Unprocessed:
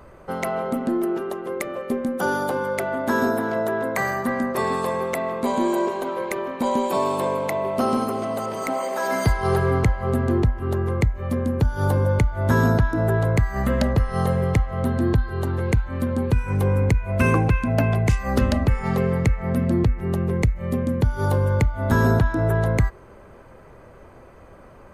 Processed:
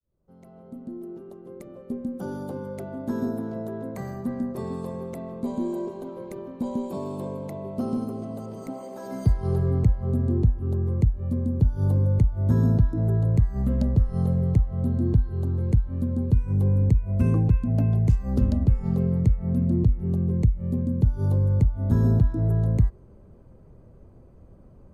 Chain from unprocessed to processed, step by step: fade-in on the opening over 2.58 s; FFT filter 180 Hz 0 dB, 1.9 kHz -24 dB, 4.5 kHz -16 dB

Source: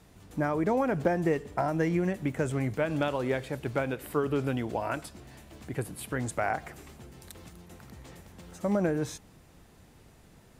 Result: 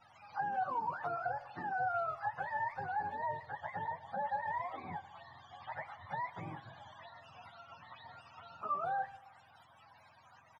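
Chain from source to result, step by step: spectrum inverted on a logarithmic axis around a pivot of 490 Hz; low-pass 2.3 kHz 6 dB/octave; resonant low shelf 570 Hz -12 dB, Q 3; Schroeder reverb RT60 1 s, combs from 30 ms, DRR 20 dB; compression 1.5:1, threshold -49 dBFS, peak gain reduction 9 dB; speakerphone echo 150 ms, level -20 dB; trim +1 dB

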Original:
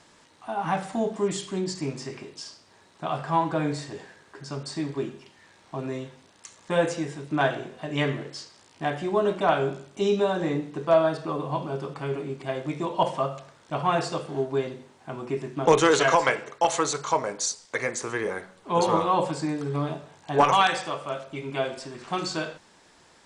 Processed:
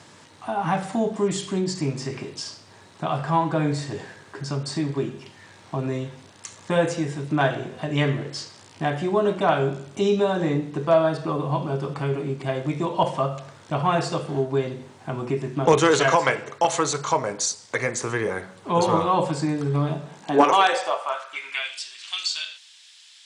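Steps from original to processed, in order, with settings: high-pass sweep 99 Hz -> 3.2 kHz, 19.83–21.84 s; in parallel at +1.5 dB: compression, threshold -35 dBFS, peak gain reduction 21.5 dB

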